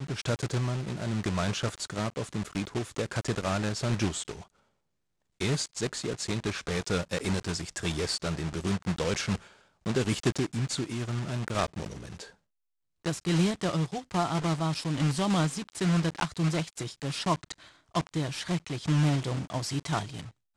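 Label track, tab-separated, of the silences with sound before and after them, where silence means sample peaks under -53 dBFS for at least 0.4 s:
4.500000	5.400000	silence
12.340000	13.050000	silence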